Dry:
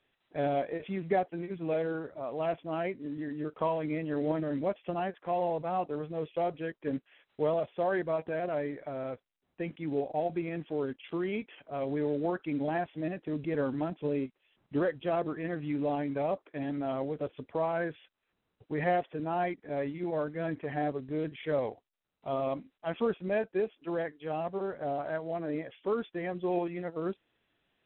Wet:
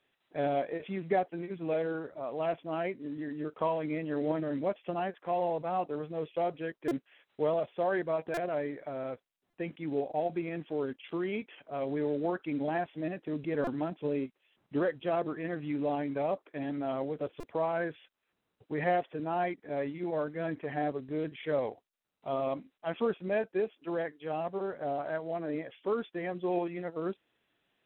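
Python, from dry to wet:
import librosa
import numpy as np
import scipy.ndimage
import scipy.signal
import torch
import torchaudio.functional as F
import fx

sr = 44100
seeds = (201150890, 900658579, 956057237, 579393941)

y = fx.low_shelf(x, sr, hz=87.0, db=-10.0)
y = fx.buffer_glitch(y, sr, at_s=(6.88, 8.34, 9.5, 13.64, 17.4), block=128, repeats=10)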